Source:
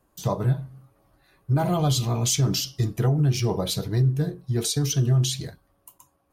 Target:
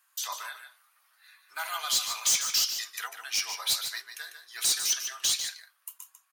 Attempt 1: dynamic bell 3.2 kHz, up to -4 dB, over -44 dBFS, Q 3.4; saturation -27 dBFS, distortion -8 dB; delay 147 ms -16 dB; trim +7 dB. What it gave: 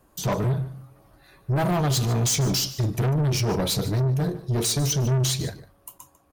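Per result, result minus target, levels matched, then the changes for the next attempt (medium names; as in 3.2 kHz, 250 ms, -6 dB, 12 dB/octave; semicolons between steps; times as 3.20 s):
echo-to-direct -7.5 dB; 1 kHz band +3.0 dB
change: delay 147 ms -8.5 dB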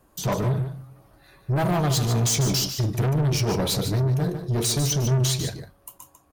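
1 kHz band +3.0 dB
add after dynamic bell: high-pass 1.4 kHz 24 dB/octave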